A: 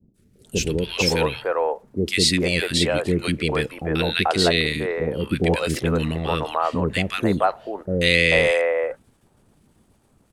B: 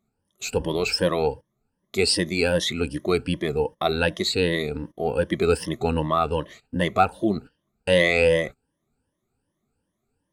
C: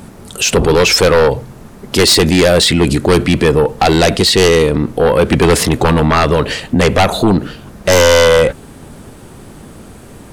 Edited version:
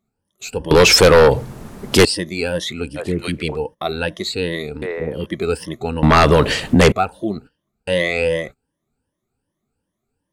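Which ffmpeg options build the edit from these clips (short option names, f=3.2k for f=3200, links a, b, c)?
-filter_complex "[2:a]asplit=2[a][b];[0:a]asplit=2[c][d];[1:a]asplit=5[e][f][g][h][i];[e]atrim=end=0.712[j];[a]atrim=start=0.708:end=2.052[k];[f]atrim=start=2.048:end=3.01[l];[c]atrim=start=2.95:end=3.57[m];[g]atrim=start=3.51:end=4.822[n];[d]atrim=start=4.818:end=5.262[o];[h]atrim=start=5.258:end=6.032[p];[b]atrim=start=6.028:end=6.922[q];[i]atrim=start=6.918[r];[j][k]acrossfade=d=0.004:c1=hsin:c2=hsin[s];[s][l]acrossfade=d=0.004:c1=hsin:c2=hsin[t];[t][m]acrossfade=d=0.06:c1=tri:c2=tri[u];[u][n]acrossfade=d=0.06:c1=tri:c2=tri[v];[v][o]acrossfade=d=0.004:c1=hsin:c2=hsin[w];[w][p]acrossfade=d=0.004:c1=hsin:c2=hsin[x];[x][q]acrossfade=d=0.004:c1=hsin:c2=hsin[y];[y][r]acrossfade=d=0.004:c1=hsin:c2=hsin"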